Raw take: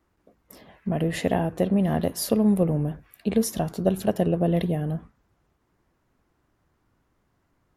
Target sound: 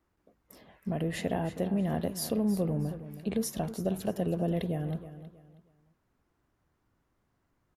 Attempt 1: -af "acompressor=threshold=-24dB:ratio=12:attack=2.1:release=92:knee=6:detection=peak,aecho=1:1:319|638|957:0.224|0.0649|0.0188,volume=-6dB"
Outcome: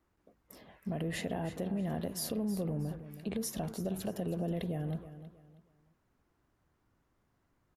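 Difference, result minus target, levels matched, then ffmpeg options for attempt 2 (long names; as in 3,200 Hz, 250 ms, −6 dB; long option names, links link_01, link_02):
downward compressor: peak gain reduction +7.5 dB
-af "acompressor=threshold=-15.5dB:ratio=12:attack=2.1:release=92:knee=6:detection=peak,aecho=1:1:319|638|957:0.224|0.0649|0.0188,volume=-6dB"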